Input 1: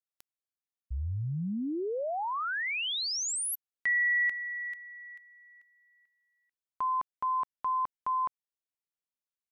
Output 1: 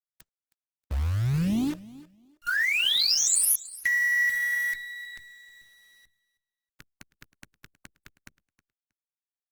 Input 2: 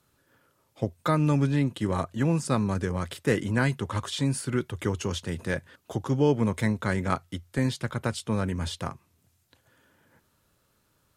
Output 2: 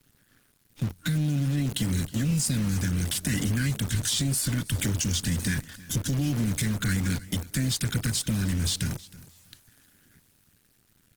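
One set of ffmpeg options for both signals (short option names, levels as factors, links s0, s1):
-filter_complex "[0:a]highpass=f=82:w=0.5412,highpass=f=82:w=1.3066,afftfilt=real='re*(1-between(b*sr/4096,310,1400))':imag='im*(1-between(b*sr/4096,310,1400))':win_size=4096:overlap=0.75,lowshelf=f=130:g=10,acrossover=split=4300[s0][s1];[s1]dynaudnorm=f=120:g=21:m=4.22[s2];[s0][s2]amix=inputs=2:normalize=0,alimiter=limit=0.15:level=0:latency=1:release=66,acompressor=threshold=0.0355:ratio=5:attack=5:release=218:knee=1:detection=peak,acrusher=bits=8:dc=4:mix=0:aa=0.000001,asoftclip=type=tanh:threshold=0.0447,asplit=2[s3][s4];[s4]aecho=0:1:317|634:0.106|0.0201[s5];[s3][s5]amix=inputs=2:normalize=0,volume=2.51" -ar 48000 -c:a libopus -b:a 16k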